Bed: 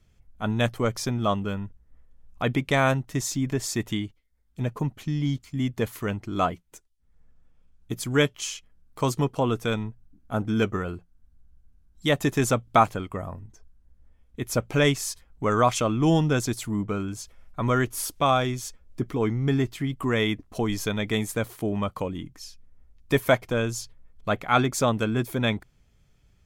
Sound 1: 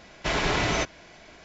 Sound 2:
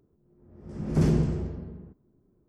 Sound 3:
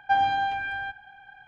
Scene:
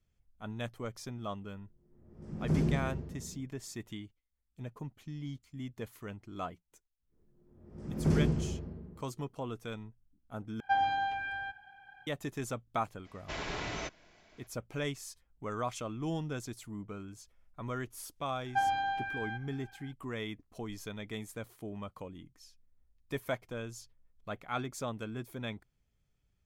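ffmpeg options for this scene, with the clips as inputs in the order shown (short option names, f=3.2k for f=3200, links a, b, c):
-filter_complex "[2:a]asplit=2[a][b];[3:a]asplit=2[c][d];[0:a]volume=-15dB[e];[a]equalizer=f=150:t=o:w=0.77:g=2[f];[e]asplit=2[g][h];[g]atrim=end=10.604[i];[c]atrim=end=1.47,asetpts=PTS-STARTPTS,volume=-6.5dB[j];[h]atrim=start=12.066[k];[f]atrim=end=2.48,asetpts=PTS-STARTPTS,volume=-8dB,afade=t=in:d=0.004:c=hsin,afade=t=out:st=2.476:d=0.004:c=hsin,adelay=1530[l];[b]atrim=end=2.48,asetpts=PTS-STARTPTS,volume=-5dB,afade=t=in:d=0.1,afade=t=out:st=2.38:d=0.1,adelay=7090[m];[1:a]atrim=end=1.44,asetpts=PTS-STARTPTS,volume=-13dB,afade=t=in:d=0.02,afade=t=out:st=1.42:d=0.02,adelay=13040[n];[d]atrim=end=1.47,asetpts=PTS-STARTPTS,volume=-7.5dB,afade=t=in:d=0.004:c=hsin,afade=t=out:st=1.466:d=0.004:c=hsin,adelay=18460[o];[i][j]acrossfade=d=0.004:c1=hsin:c2=hsin[p];[p][k]acrossfade=d=0.004:c1=hsin:c2=hsin[q];[q][l][m][n][o]amix=inputs=5:normalize=0"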